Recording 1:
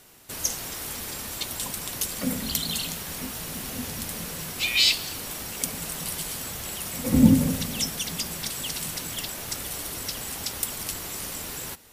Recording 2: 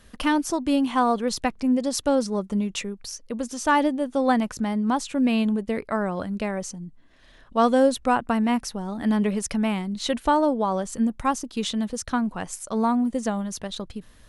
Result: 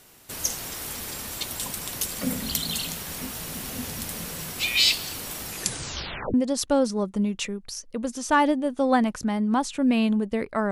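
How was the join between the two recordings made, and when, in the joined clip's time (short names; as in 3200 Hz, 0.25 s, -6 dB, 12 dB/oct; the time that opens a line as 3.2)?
recording 1
5.46 tape stop 0.88 s
6.34 switch to recording 2 from 1.7 s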